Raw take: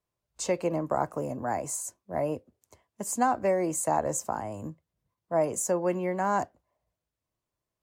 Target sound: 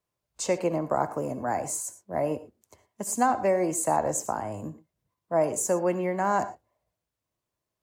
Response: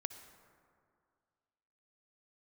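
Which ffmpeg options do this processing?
-filter_complex "[0:a]lowshelf=f=74:g=-6[a];[1:a]atrim=start_sample=2205,afade=t=out:st=0.17:d=0.01,atrim=end_sample=7938[b];[a][b]afir=irnorm=-1:irlink=0,volume=4dB"

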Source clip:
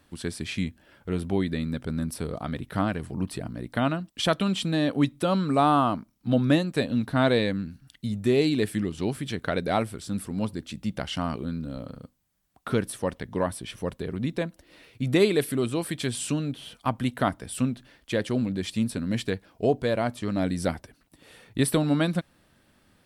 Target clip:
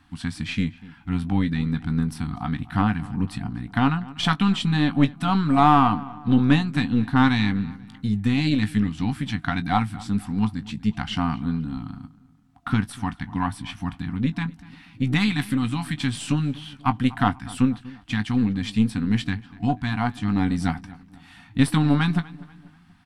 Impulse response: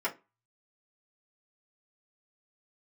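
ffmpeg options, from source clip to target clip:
-filter_complex "[0:a]afftfilt=real='re*(1-between(b*sr/4096,310,690))':imag='im*(1-between(b*sr/4096,310,690))':win_size=4096:overlap=0.75,aeval=exprs='0.282*(cos(1*acos(clip(val(0)/0.282,-1,1)))-cos(1*PI/2))+0.0224*(cos(4*acos(clip(val(0)/0.282,-1,1)))-cos(4*PI/2))':c=same,aemphasis=mode=reproduction:type=50fm,asplit=2[a][b];[b]adelay=19,volume=-11.5dB[c];[a][c]amix=inputs=2:normalize=0,asplit=2[d][e];[e]adelay=243,lowpass=f=2.7k:p=1,volume=-19.5dB,asplit=2[f][g];[g]adelay=243,lowpass=f=2.7k:p=1,volume=0.45,asplit=2[h][i];[i]adelay=243,lowpass=f=2.7k:p=1,volume=0.45[j];[f][h][j]amix=inputs=3:normalize=0[k];[d][k]amix=inputs=2:normalize=0,volume=5dB"

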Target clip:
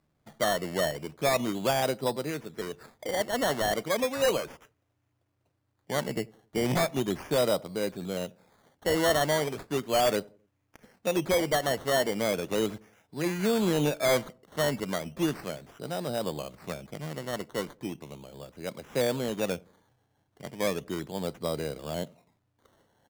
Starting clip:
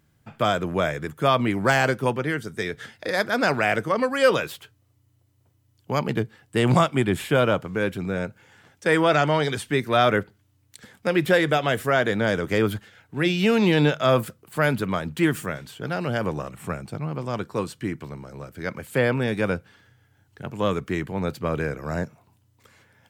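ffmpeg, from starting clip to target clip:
-filter_complex "[0:a]equalizer=f=100:t=o:w=0.67:g=-10,equalizer=f=630:t=o:w=0.67:g=5,equalizer=f=1.6k:t=o:w=0.67:g=-7,equalizer=f=4k:t=o:w=0.67:g=-7,acrusher=samples=14:mix=1:aa=0.000001:lfo=1:lforange=8.4:lforate=0.36,aeval=exprs='0.266*(abs(mod(val(0)/0.266+3,4)-2)-1)':c=same,asplit=2[a][b];[b]adelay=88,lowpass=f=810:p=1,volume=-23.5dB,asplit=2[c][d];[d]adelay=88,lowpass=f=810:p=1,volume=0.44,asplit=2[e][f];[f]adelay=88,lowpass=f=810:p=1,volume=0.44[g];[c][e][g]amix=inputs=3:normalize=0[h];[a][h]amix=inputs=2:normalize=0,volume=-6.5dB"

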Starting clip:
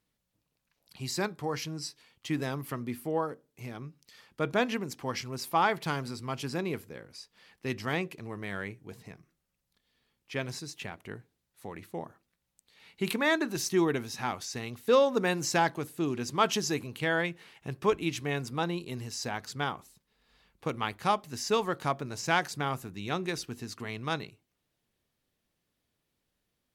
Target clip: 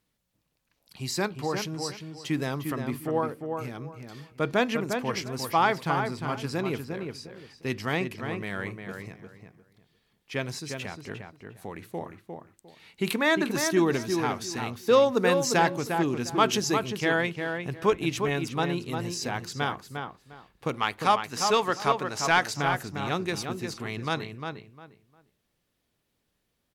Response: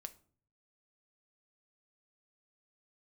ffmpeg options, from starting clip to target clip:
-filter_complex "[0:a]asettb=1/sr,asplit=3[a][b][c];[a]atrim=end=20.744[d];[b]atrim=start=20.74:end=22.54,asetpts=PTS-STARTPTS,afade=t=in:d=0.004:c=qsin,afade=t=out:st=1.796:d=0.004:c=qsin,asplit=2[e][f];[f]highpass=f=720:p=1,volume=8dB,asoftclip=type=tanh:threshold=-11.5dB[g];[e][g]amix=inputs=2:normalize=0,lowpass=f=7.6k:p=1,volume=-6dB[h];[c]atrim=start=22.536[i];[d][h]acrossfade=d=0.004:c1=hsin:c2=qsin[j];[j][i]acrossfade=d=0.004:c1=qsin:c2=hsin,asplit=2[k][l];[l]adelay=353,lowpass=f=2.5k:p=1,volume=-5.5dB,asplit=2[m][n];[n]adelay=353,lowpass=f=2.5k:p=1,volume=0.23,asplit=2[o][p];[p]adelay=353,lowpass=f=2.5k:p=1,volume=0.23[q];[k][m][o][q]amix=inputs=4:normalize=0,asettb=1/sr,asplit=3[r][s][t];[r]atrim=end=5.814[u];[s]atrim=start=5.81:end=6.44,asetpts=PTS-STARTPTS,afade=t=in:d=0.004:c=qsin,afade=t=out:st=0.626:d=0.004:c=qsin,acrossover=split=2600[v][w];[w]acompressor=threshold=-45dB:ratio=4:attack=1:release=60[x];[v][x]amix=inputs=2:normalize=0[y];[t]atrim=start=6.436[z];[u][y]acrossfade=d=0.004:c1=hsin:c2=qsin[aa];[aa][z]acrossfade=d=0.004:c1=qsin:c2=hsin,volume=3dB"

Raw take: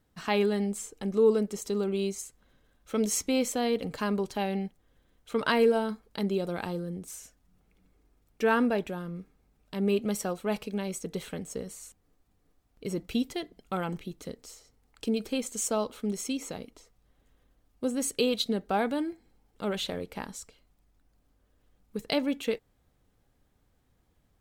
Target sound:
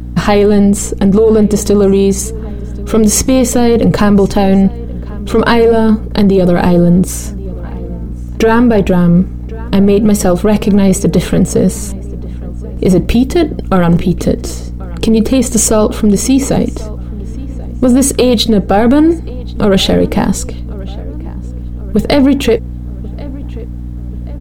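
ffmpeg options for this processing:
-filter_complex "[0:a]tiltshelf=f=760:g=7.5,acompressor=threshold=-27dB:ratio=3,apsyclip=32dB,aeval=exprs='val(0)+0.126*(sin(2*PI*60*n/s)+sin(2*PI*2*60*n/s)/2+sin(2*PI*3*60*n/s)/3+sin(2*PI*4*60*n/s)/4+sin(2*PI*5*60*n/s)/5)':c=same,asplit=2[a][b];[b]adelay=1085,lowpass=f=2.5k:p=1,volume=-20.5dB,asplit=2[c][d];[d]adelay=1085,lowpass=f=2.5k:p=1,volume=0.53,asplit=2[e][f];[f]adelay=1085,lowpass=f=2.5k:p=1,volume=0.53,asplit=2[g][h];[h]adelay=1085,lowpass=f=2.5k:p=1,volume=0.53[i];[c][e][g][i]amix=inputs=4:normalize=0[j];[a][j]amix=inputs=2:normalize=0,volume=-3.5dB"

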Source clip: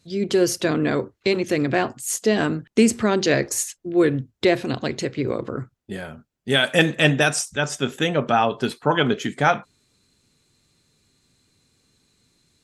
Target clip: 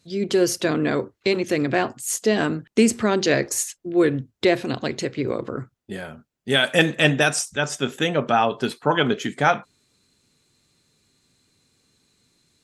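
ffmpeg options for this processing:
-af "lowshelf=f=98:g=-6"

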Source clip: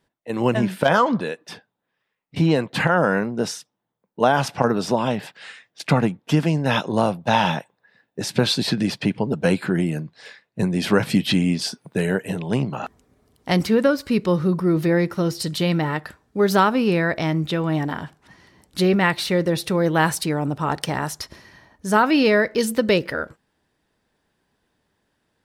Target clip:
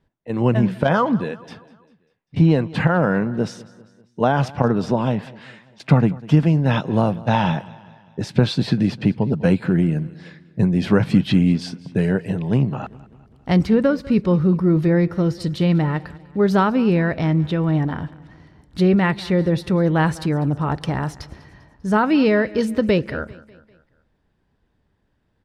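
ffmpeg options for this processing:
-filter_complex "[0:a]aemphasis=mode=reproduction:type=bsi,asplit=2[a][b];[b]aecho=0:1:198|396|594|792:0.0944|0.0472|0.0236|0.0118[c];[a][c]amix=inputs=2:normalize=0,volume=-2dB"

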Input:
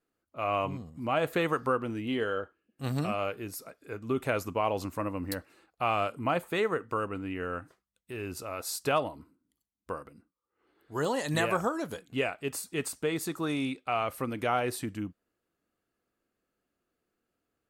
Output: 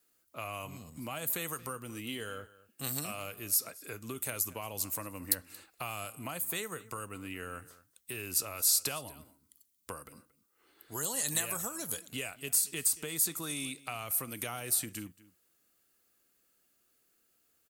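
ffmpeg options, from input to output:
-filter_complex "[0:a]acrossover=split=170|7100[a][b][c];[a]acompressor=threshold=-48dB:ratio=4[d];[b]acompressor=threshold=-43dB:ratio=4[e];[c]acompressor=threshold=-47dB:ratio=4[f];[d][e][f]amix=inputs=3:normalize=0,crystalizer=i=7:c=0,asplit=2[g][h];[h]adelay=227.4,volume=-19dB,highshelf=f=4k:g=-5.12[i];[g][i]amix=inputs=2:normalize=0,volume=-1dB"

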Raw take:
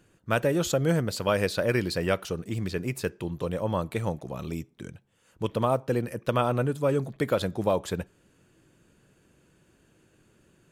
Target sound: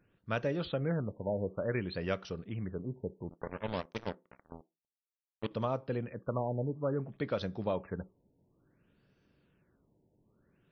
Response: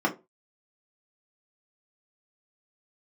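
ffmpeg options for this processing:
-filter_complex "[0:a]asettb=1/sr,asplit=3[a][b][c];[a]atrim=end=3.294[d];[b]atrim=start=3.29:end=5.51,asetpts=PTS-STARTPTS,afade=t=in:d=0.004:c=qsin,afade=t=out:st=2.216:d=0.004:c=qsin,acrusher=bits=3:mix=0:aa=0.5[e];[c]atrim=start=5.506[f];[d][e]acrossfade=d=0.004:c1=hsin:c2=qsin[g];[g][f]acrossfade=d=0.004:c1=qsin:c2=hsin,asplit=2[h][i];[1:a]atrim=start_sample=2205[j];[i][j]afir=irnorm=-1:irlink=0,volume=-27.5dB[k];[h][k]amix=inputs=2:normalize=0,afftfilt=real='re*lt(b*sr/1024,940*pow(6300/940,0.5+0.5*sin(2*PI*0.57*pts/sr)))':imag='im*lt(b*sr/1024,940*pow(6300/940,0.5+0.5*sin(2*PI*0.57*pts/sr)))':win_size=1024:overlap=0.75,volume=-8dB"

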